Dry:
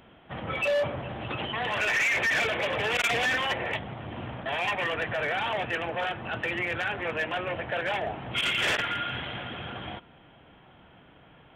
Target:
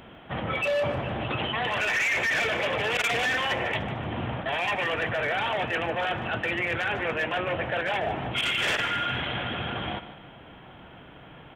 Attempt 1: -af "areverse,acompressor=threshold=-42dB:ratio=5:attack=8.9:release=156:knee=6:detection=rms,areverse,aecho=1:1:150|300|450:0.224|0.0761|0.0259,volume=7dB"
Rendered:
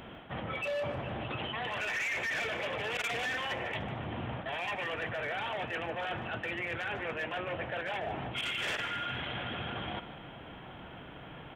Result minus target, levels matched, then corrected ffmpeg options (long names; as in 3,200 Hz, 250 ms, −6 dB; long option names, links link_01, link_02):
downward compressor: peak gain reduction +8.5 dB
-af "areverse,acompressor=threshold=-31.5dB:ratio=5:attack=8.9:release=156:knee=6:detection=rms,areverse,aecho=1:1:150|300|450:0.224|0.0761|0.0259,volume=7dB"